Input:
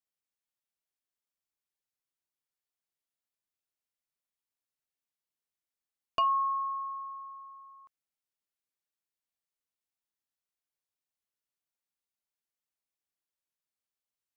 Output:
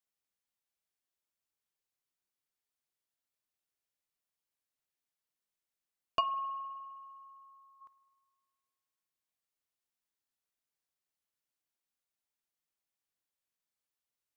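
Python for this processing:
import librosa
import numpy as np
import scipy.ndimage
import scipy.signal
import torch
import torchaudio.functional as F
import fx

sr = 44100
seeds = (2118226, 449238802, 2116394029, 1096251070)

y = fx.bessel_highpass(x, sr, hz=1800.0, order=2, at=(6.2, 7.8), fade=0.02)
y = fx.rev_spring(y, sr, rt60_s=1.8, pass_ms=(51,), chirp_ms=45, drr_db=16.0)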